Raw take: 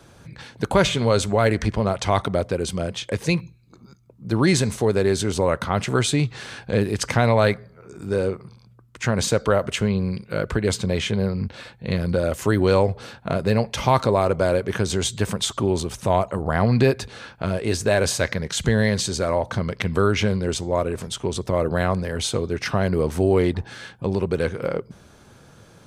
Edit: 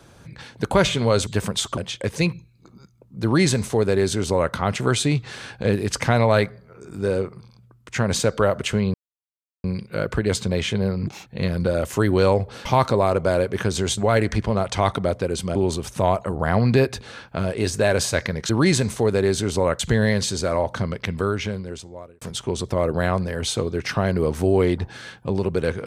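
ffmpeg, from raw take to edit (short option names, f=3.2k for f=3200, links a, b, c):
-filter_complex "[0:a]asplit=12[a][b][c][d][e][f][g][h][i][j][k][l];[a]atrim=end=1.272[m];[b]atrim=start=15.118:end=15.622[n];[c]atrim=start=2.848:end=10.02,asetpts=PTS-STARTPTS,afade=t=out:st=7.168:d=0.004:c=hsin,apad=pad_dur=0.7[o];[d]atrim=start=10.02:end=11.454,asetpts=PTS-STARTPTS,afade=t=in:d=0.004:c=hsin[p];[e]atrim=start=11.45:end=11.75,asetpts=PTS-STARTPTS,asetrate=68355,aresample=44100,atrim=end_sample=8535,asetpts=PTS-STARTPTS[q];[f]atrim=start=11.746:end=13.142[r];[g]atrim=start=13.798:end=15.122[s];[h]atrim=start=1.268:end=2.852[t];[i]atrim=start=15.618:end=18.562[u];[j]atrim=start=4.308:end=5.612[v];[k]atrim=start=18.558:end=20.98,asetpts=PTS-STARTPTS,afade=t=out:st=0.952:d=1.47[w];[l]atrim=start=20.98,asetpts=PTS-STARTPTS,afade=t=in:d=0.004:c=hsin[x];[m][n]acrossfade=d=0.004:c1=hsin:c2=hsin[y];[o][p]concat=n=2:v=0:a=1[z];[y][z]acrossfade=d=0.004:c1=hsin:c2=hsin[aa];[aa][q]acrossfade=d=0.004:c1=hsin:c2=hsin[ab];[ab][r]acrossfade=d=0.004:c1=hsin:c2=hsin[ac];[ac][s]acrossfade=d=0.004:c1=hsin:c2=hsin[ad];[ad][t]acrossfade=d=0.004:c1=hsin:c2=hsin[ae];[ae][u]acrossfade=d=0.004:c1=hsin:c2=hsin[af];[af][v]acrossfade=d=0.004:c1=hsin:c2=hsin[ag];[w][x]concat=n=2:v=0:a=1[ah];[ag][ah]acrossfade=d=0.004:c1=hsin:c2=hsin"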